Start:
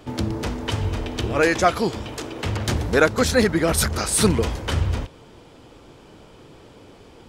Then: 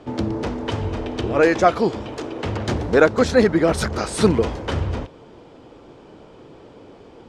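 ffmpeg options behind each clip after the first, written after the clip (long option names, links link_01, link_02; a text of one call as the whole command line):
ffmpeg -i in.wav -af "lowpass=7000,equalizer=frequency=450:width=0.34:gain=8.5,volume=-4.5dB" out.wav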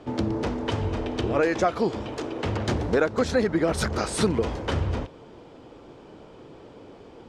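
ffmpeg -i in.wav -af "acompressor=threshold=-17dB:ratio=4,volume=-2dB" out.wav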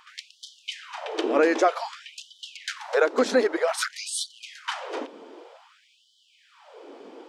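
ffmpeg -i in.wav -af "afftfilt=real='re*gte(b*sr/1024,210*pow(3000/210,0.5+0.5*sin(2*PI*0.53*pts/sr)))':imag='im*gte(b*sr/1024,210*pow(3000/210,0.5+0.5*sin(2*PI*0.53*pts/sr)))':win_size=1024:overlap=0.75,volume=2.5dB" out.wav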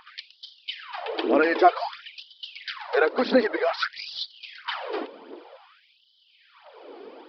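ffmpeg -i in.wav -af "aphaser=in_gain=1:out_gain=1:delay=2.9:decay=0.52:speed=1.5:type=triangular,aresample=11025,aresample=44100" out.wav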